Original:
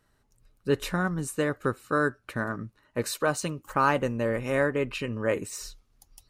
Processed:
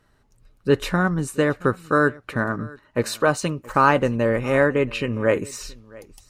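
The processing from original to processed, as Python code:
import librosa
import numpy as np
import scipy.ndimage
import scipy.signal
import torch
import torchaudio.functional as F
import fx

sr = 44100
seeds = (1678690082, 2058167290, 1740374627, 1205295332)

p1 = fx.high_shelf(x, sr, hz=6800.0, db=-8.5)
p2 = p1 + fx.echo_single(p1, sr, ms=674, db=-22.5, dry=0)
y = F.gain(torch.from_numpy(p2), 7.0).numpy()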